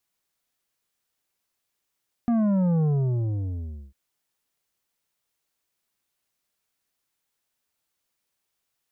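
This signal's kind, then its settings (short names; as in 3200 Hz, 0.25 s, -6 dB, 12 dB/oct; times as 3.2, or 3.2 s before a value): sub drop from 240 Hz, over 1.65 s, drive 8.5 dB, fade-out 1.10 s, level -20 dB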